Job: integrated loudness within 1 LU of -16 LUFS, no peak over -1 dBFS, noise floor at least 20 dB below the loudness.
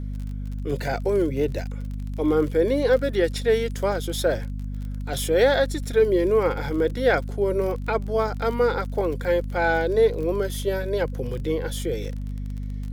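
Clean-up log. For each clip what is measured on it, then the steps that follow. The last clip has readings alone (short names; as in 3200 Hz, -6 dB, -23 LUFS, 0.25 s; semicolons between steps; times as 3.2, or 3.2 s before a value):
ticks 34/s; hum 50 Hz; harmonics up to 250 Hz; hum level -28 dBFS; loudness -24.0 LUFS; peak -7.0 dBFS; loudness target -16.0 LUFS
-> de-click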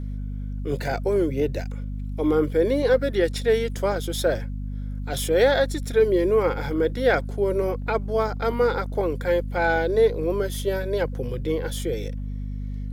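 ticks 0.62/s; hum 50 Hz; harmonics up to 250 Hz; hum level -28 dBFS
-> de-hum 50 Hz, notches 5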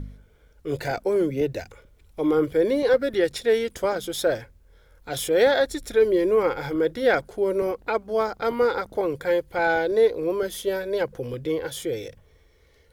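hum none; loudness -24.0 LUFS; peak -7.5 dBFS; loudness target -16.0 LUFS
-> gain +8 dB; limiter -1 dBFS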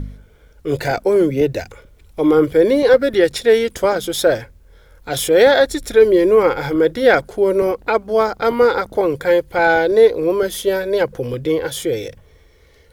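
loudness -16.0 LUFS; peak -1.0 dBFS; noise floor -50 dBFS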